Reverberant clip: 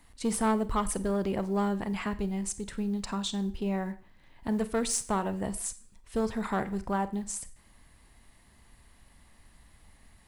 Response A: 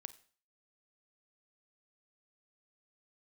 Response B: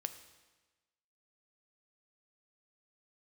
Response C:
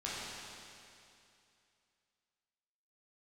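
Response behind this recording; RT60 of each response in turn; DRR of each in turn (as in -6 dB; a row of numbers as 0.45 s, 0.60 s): A; 0.45 s, 1.2 s, 2.6 s; 13.5 dB, 9.0 dB, -8.0 dB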